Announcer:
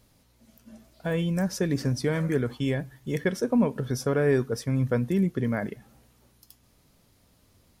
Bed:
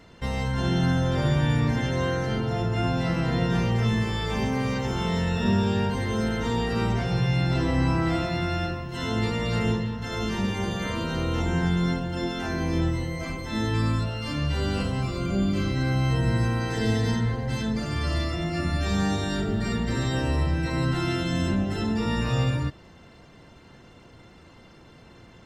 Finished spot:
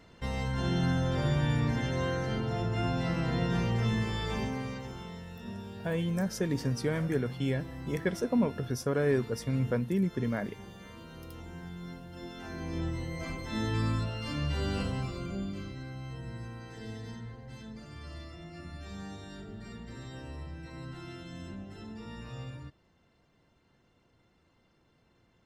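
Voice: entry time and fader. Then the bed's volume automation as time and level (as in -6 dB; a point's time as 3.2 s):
4.80 s, -4.5 dB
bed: 4.32 s -5.5 dB
5.25 s -19.5 dB
11.75 s -19.5 dB
13.23 s -5.5 dB
14.9 s -5.5 dB
15.92 s -18 dB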